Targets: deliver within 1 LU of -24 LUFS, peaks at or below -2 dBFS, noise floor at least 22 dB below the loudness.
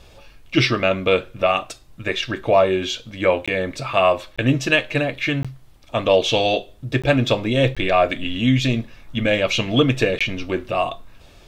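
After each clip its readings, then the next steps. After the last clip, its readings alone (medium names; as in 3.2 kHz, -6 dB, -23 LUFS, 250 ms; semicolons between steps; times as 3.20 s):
dropouts 6; longest dropout 16 ms; loudness -20.0 LUFS; peak level -3.5 dBFS; loudness target -24.0 LUFS
-> interpolate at 3.46/4.36/5.43/7.02/7.75/10.19 s, 16 ms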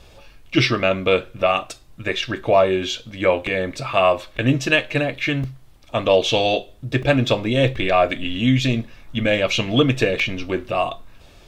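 dropouts 0; loudness -20.0 LUFS; peak level -3.5 dBFS; loudness target -24.0 LUFS
-> trim -4 dB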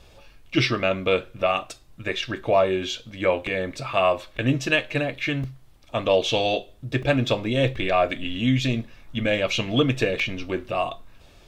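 loudness -24.0 LUFS; peak level -7.5 dBFS; noise floor -52 dBFS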